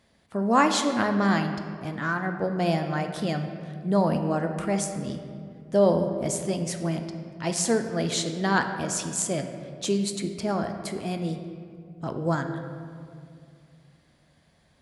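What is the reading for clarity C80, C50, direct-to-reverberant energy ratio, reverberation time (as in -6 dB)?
8.5 dB, 7.5 dB, 6.0 dB, 2.3 s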